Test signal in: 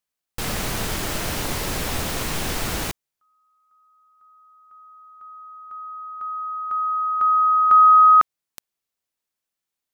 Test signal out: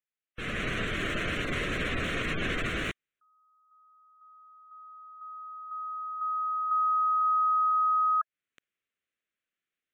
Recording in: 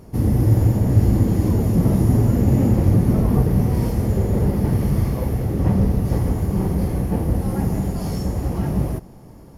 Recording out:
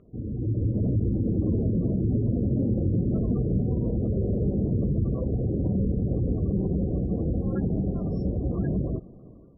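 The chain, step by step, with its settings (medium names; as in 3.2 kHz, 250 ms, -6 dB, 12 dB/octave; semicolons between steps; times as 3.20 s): spectral gate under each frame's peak -25 dB strong; bass shelf 260 Hz -11 dB; compression, threshold -22 dBFS; peak limiter -21 dBFS; level rider gain up to 9 dB; distance through air 130 m; static phaser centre 2.1 kHz, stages 4; trim -4 dB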